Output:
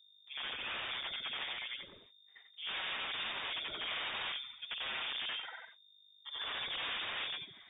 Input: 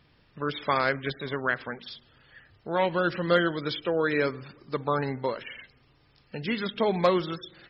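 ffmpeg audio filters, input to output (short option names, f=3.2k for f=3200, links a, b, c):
-af "afftfilt=real='re':imag='-im':win_size=8192:overlap=0.75,agate=range=-59dB:threshold=-57dB:ratio=16:detection=peak,aeval=exprs='(mod(29.9*val(0)+1,2)-1)/29.9':c=same,aeval=exprs='(tanh(50.1*val(0)+0.2)-tanh(0.2))/50.1':c=same,aeval=exprs='val(0)+0.000708*(sin(2*PI*50*n/s)+sin(2*PI*2*50*n/s)/2+sin(2*PI*3*50*n/s)/3+sin(2*PI*4*50*n/s)/4+sin(2*PI*5*50*n/s)/5)':c=same,lowpass=f=3.1k:t=q:w=0.5098,lowpass=f=3.1k:t=q:w=0.6013,lowpass=f=3.1k:t=q:w=0.9,lowpass=f=3.1k:t=q:w=2.563,afreqshift=-3700"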